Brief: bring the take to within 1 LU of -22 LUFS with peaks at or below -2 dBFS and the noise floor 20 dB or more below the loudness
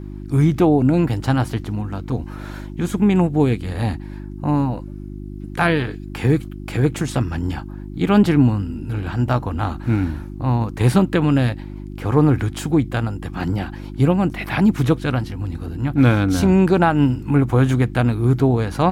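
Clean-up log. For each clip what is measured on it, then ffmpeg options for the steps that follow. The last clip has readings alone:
hum 50 Hz; harmonics up to 350 Hz; hum level -30 dBFS; loudness -19.5 LUFS; peak -3.5 dBFS; loudness target -22.0 LUFS
-> -af "bandreject=f=50:t=h:w=4,bandreject=f=100:t=h:w=4,bandreject=f=150:t=h:w=4,bandreject=f=200:t=h:w=4,bandreject=f=250:t=h:w=4,bandreject=f=300:t=h:w=4,bandreject=f=350:t=h:w=4"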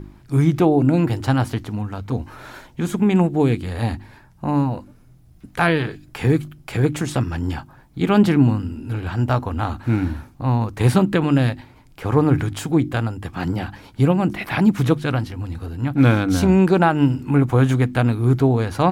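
hum none; loudness -20.0 LUFS; peak -3.5 dBFS; loudness target -22.0 LUFS
-> -af "volume=-2dB"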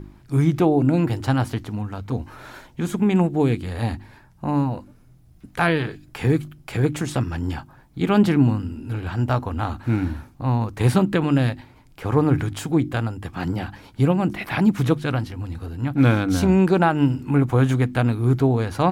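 loudness -22.0 LUFS; peak -5.5 dBFS; noise floor -52 dBFS

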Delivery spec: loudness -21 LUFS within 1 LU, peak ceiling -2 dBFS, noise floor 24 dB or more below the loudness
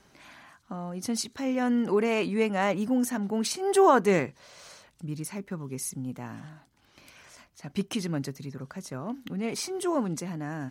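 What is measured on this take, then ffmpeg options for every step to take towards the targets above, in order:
loudness -28.5 LUFS; peak -8.5 dBFS; loudness target -21.0 LUFS
-> -af "volume=7.5dB,alimiter=limit=-2dB:level=0:latency=1"

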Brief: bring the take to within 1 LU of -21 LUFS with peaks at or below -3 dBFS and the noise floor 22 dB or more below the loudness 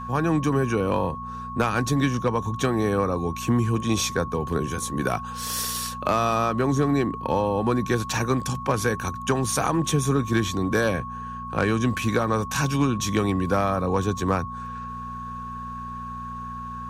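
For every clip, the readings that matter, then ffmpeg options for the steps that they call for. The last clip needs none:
hum 60 Hz; harmonics up to 240 Hz; hum level -36 dBFS; steady tone 1100 Hz; tone level -33 dBFS; loudness -25.0 LUFS; peak -9.0 dBFS; loudness target -21.0 LUFS
-> -af "bandreject=f=60:t=h:w=4,bandreject=f=120:t=h:w=4,bandreject=f=180:t=h:w=4,bandreject=f=240:t=h:w=4"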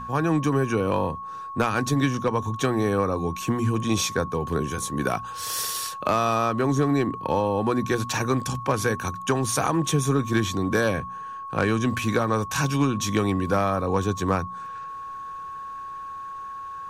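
hum none; steady tone 1100 Hz; tone level -33 dBFS
-> -af "bandreject=f=1.1k:w=30"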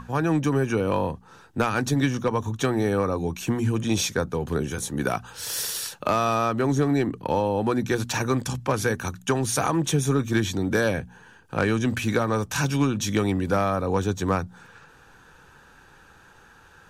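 steady tone none; loudness -25.0 LUFS; peak -9.5 dBFS; loudness target -21.0 LUFS
-> -af "volume=4dB"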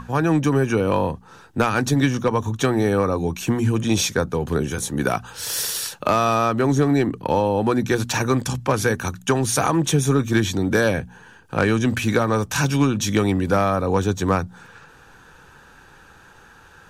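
loudness -21.0 LUFS; peak -5.5 dBFS; noise floor -49 dBFS

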